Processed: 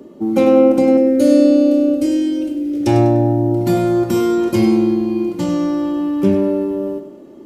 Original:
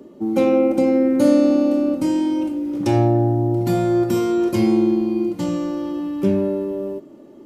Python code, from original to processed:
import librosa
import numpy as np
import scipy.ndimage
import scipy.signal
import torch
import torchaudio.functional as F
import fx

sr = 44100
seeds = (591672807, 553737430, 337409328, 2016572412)

y = fx.fixed_phaser(x, sr, hz=410.0, stages=4, at=(0.97, 2.87))
y = fx.echo_feedback(y, sr, ms=99, feedback_pct=39, wet_db=-10.5)
y = y * librosa.db_to_amplitude(3.5)